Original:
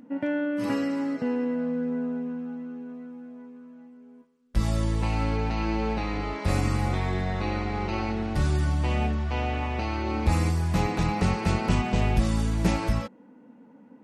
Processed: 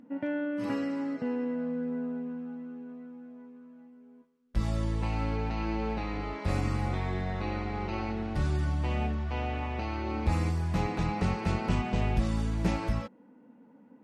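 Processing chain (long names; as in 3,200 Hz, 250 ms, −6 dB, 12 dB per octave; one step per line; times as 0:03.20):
high-shelf EQ 6,500 Hz −9 dB
level −4.5 dB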